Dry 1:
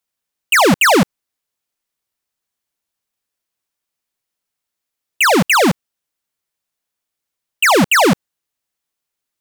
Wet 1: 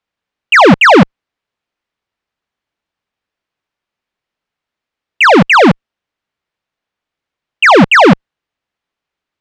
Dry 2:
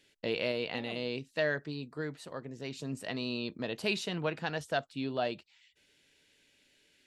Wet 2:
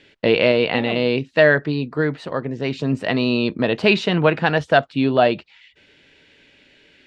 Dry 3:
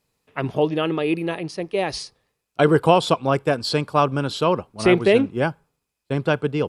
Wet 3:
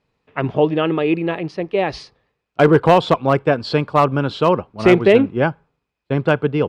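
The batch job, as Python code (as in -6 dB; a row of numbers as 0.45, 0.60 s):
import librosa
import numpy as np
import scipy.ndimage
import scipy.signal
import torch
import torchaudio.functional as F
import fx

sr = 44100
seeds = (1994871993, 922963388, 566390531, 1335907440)

y = scipy.signal.sosfilt(scipy.signal.butter(2, 3000.0, 'lowpass', fs=sr, output='sos'), x)
y = fx.clip_asym(y, sr, top_db=-8.0, bottom_db=-6.0)
y = librosa.util.normalize(y) * 10.0 ** (-1.5 / 20.0)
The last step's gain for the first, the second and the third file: +7.0, +17.0, +4.5 dB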